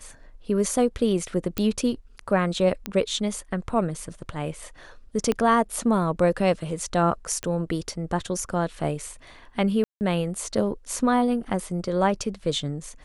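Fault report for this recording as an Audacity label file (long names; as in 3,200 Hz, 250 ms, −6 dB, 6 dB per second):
1.580000	1.580000	click −11 dBFS
2.860000	2.860000	click −13 dBFS
5.320000	5.320000	click −11 dBFS
7.430000	7.430000	click −15 dBFS
9.840000	10.010000	drop-out 169 ms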